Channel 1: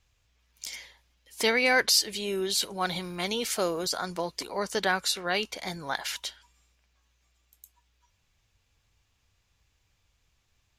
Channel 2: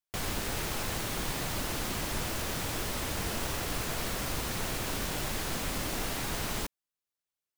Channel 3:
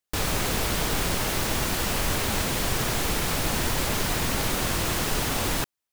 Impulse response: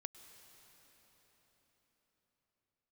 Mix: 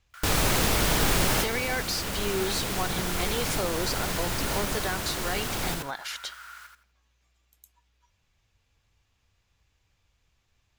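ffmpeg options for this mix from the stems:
-filter_complex "[0:a]highshelf=f=4.5k:g=-5,volume=1dB,asplit=2[a][b];[1:a]highpass=f=1.4k:t=q:w=10,volume=-17dB,asplit=2[c][d];[d]volume=-5dB[e];[2:a]adelay=100,volume=2dB,asplit=2[f][g];[g]volume=-10dB[h];[b]apad=whole_len=265557[i];[f][i]sidechaincompress=threshold=-33dB:ratio=8:attack=36:release=1400[j];[a][c]amix=inputs=2:normalize=0,alimiter=limit=-21dB:level=0:latency=1:release=175,volume=0dB[k];[e][h]amix=inputs=2:normalize=0,aecho=0:1:83|166|249|332:1|0.22|0.0484|0.0106[l];[j][k][l]amix=inputs=3:normalize=0"

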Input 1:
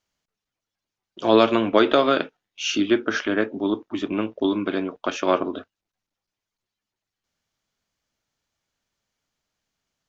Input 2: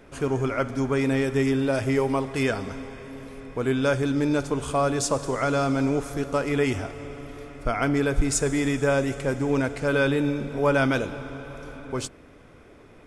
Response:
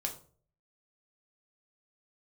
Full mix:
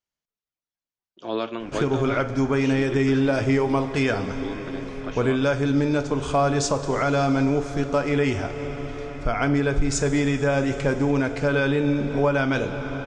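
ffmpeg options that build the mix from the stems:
-filter_complex "[0:a]volume=-11.5dB[a];[1:a]lowpass=f=6.9k:w=0.5412,lowpass=f=6.9k:w=1.3066,adelay=1600,volume=2dB,asplit=2[b][c];[c]volume=-4dB[d];[2:a]atrim=start_sample=2205[e];[d][e]afir=irnorm=-1:irlink=0[f];[a][b][f]amix=inputs=3:normalize=0,alimiter=limit=-12dB:level=0:latency=1:release=429"

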